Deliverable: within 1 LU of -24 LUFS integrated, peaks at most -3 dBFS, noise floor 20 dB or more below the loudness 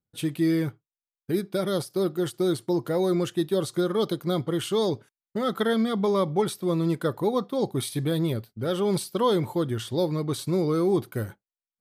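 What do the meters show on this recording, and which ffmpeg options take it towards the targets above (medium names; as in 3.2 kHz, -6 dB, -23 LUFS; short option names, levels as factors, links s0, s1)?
loudness -26.5 LUFS; peak level -12.5 dBFS; loudness target -24.0 LUFS
-> -af "volume=1.33"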